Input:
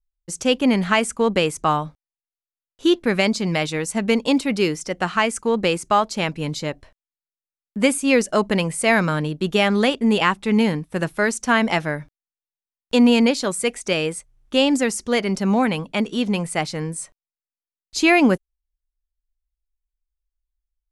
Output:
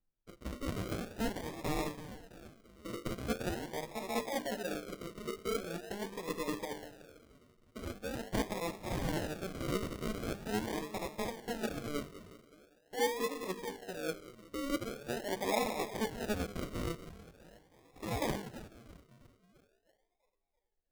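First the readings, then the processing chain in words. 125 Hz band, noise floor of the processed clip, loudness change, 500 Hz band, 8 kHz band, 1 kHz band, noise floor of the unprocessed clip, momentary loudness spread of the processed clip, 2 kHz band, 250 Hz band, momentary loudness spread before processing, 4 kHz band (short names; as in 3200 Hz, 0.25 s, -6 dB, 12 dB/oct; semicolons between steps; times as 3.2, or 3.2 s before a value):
-15.0 dB, -79 dBFS, -18.5 dB, -16.5 dB, -17.0 dB, -17.0 dB, under -85 dBFS, 15 LU, -20.0 dB, -20.0 dB, 9 LU, -19.0 dB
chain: spectral limiter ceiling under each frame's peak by 20 dB; notches 50/100/150/200/250/300/350/400/450 Hz; reverse; compressor 5:1, threshold -27 dBFS, peak gain reduction 15 dB; reverse; limiter -21.5 dBFS, peak gain reduction 8.5 dB; on a send: split-band echo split 520 Hz, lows 0.187 s, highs 0.331 s, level -13.5 dB; on the sum: flange 0.26 Hz, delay 8.3 ms, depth 2.7 ms, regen 0%; LFO low-pass sine 0.13 Hz 430–1600 Hz; decimation with a swept rate 41×, swing 60% 0.43 Hz; gain -2 dB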